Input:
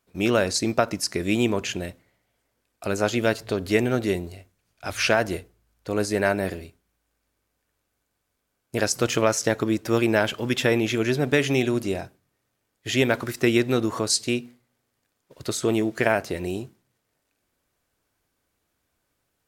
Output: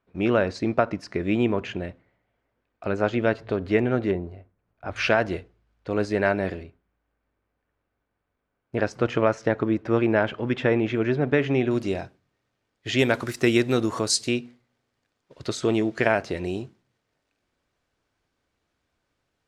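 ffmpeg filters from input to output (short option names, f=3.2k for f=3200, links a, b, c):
-af "asetnsamples=n=441:p=0,asendcmd='4.11 lowpass f 1300;4.96 lowpass f 3300;6.63 lowpass f 2000;11.71 lowpass f 4900;12.99 lowpass f 10000;14.28 lowpass f 5300',lowpass=2.2k"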